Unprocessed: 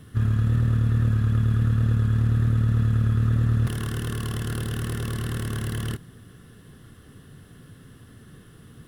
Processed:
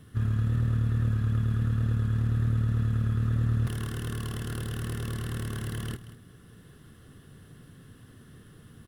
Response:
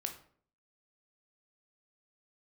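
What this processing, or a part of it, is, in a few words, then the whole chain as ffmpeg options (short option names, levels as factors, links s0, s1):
ducked delay: -filter_complex "[0:a]asplit=3[s0][s1][s2];[s1]adelay=184,volume=0.631[s3];[s2]apad=whole_len=399464[s4];[s3][s4]sidechaincompress=threshold=0.0141:ratio=8:attack=16:release=680[s5];[s0][s5]amix=inputs=2:normalize=0,volume=0.562"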